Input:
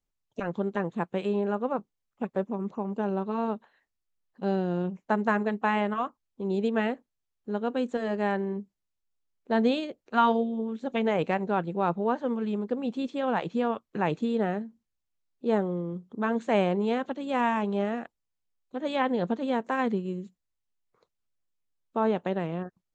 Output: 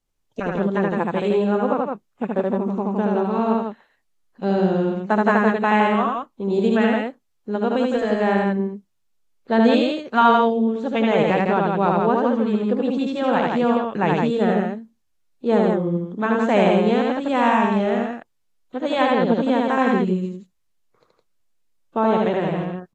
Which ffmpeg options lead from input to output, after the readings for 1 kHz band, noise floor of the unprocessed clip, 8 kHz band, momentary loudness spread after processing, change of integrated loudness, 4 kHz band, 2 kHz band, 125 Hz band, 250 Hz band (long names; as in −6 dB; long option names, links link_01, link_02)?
+9.0 dB, −83 dBFS, can't be measured, 11 LU, +9.0 dB, +9.0 dB, +9.0 dB, +9.0 dB, +9.0 dB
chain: -filter_complex "[0:a]asplit=2[link_01][link_02];[link_02]aecho=0:1:75.8|163.3:0.794|0.631[link_03];[link_01][link_03]amix=inputs=2:normalize=0,volume=6dB" -ar 32000 -c:a aac -b:a 48k